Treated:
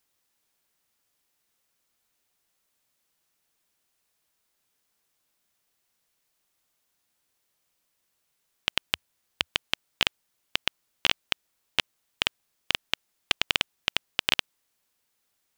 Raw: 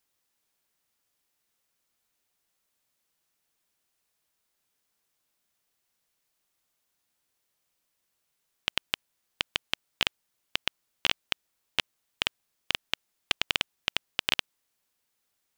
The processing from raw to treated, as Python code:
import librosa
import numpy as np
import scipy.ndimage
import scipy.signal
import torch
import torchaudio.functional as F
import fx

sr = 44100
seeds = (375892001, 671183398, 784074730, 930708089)

y = fx.peak_eq(x, sr, hz=80.0, db=5.0, octaves=0.77, at=(8.9, 9.48))
y = F.gain(torch.from_numpy(y), 2.5).numpy()